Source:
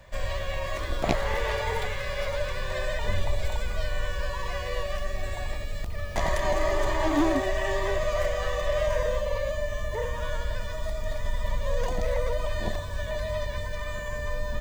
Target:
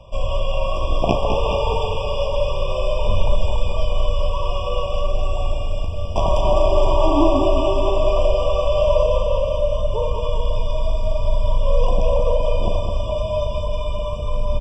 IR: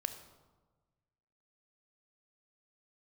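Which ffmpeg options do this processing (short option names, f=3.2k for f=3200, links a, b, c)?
-filter_complex "[0:a]lowpass=5.3k,asplit=2[a][b];[b]adelay=39,volume=-11dB[c];[a][c]amix=inputs=2:normalize=0,aecho=1:1:209|418|627|836|1045|1254|1463:0.473|0.265|0.148|0.0831|0.0465|0.0261|0.0146,asplit=2[d][e];[1:a]atrim=start_sample=2205[f];[e][f]afir=irnorm=-1:irlink=0,volume=-7.5dB[g];[d][g]amix=inputs=2:normalize=0,afftfilt=real='re*eq(mod(floor(b*sr/1024/1200),2),0)':imag='im*eq(mod(floor(b*sr/1024/1200),2),0)':win_size=1024:overlap=0.75,volume=4.5dB"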